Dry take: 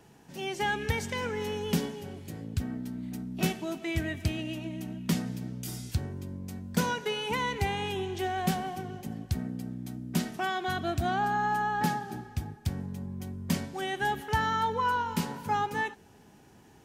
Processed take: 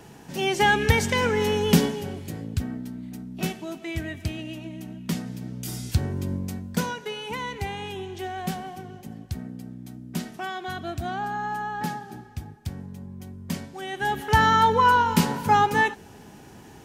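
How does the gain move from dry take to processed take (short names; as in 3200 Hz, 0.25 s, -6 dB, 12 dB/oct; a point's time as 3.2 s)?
1.85 s +10 dB
3.1 s 0 dB
5.25 s 0 dB
6.33 s +11 dB
6.94 s -1.5 dB
13.83 s -1.5 dB
14.41 s +10 dB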